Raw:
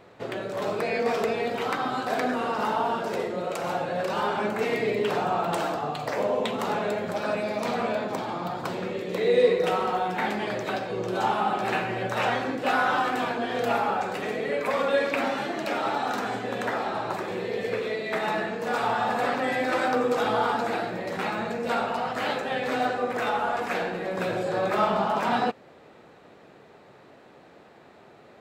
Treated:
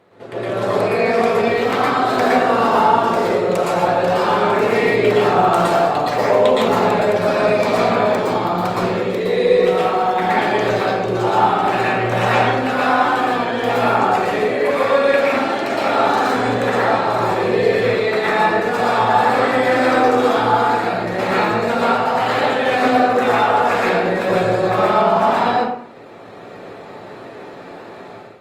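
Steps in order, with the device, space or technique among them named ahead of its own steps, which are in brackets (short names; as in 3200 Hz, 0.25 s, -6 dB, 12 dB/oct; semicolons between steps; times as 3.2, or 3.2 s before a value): far-field microphone of a smart speaker (reverb RT60 0.60 s, pre-delay 0.11 s, DRR -6 dB; HPF 98 Hz; AGC; gain -2 dB; Opus 32 kbps 48000 Hz)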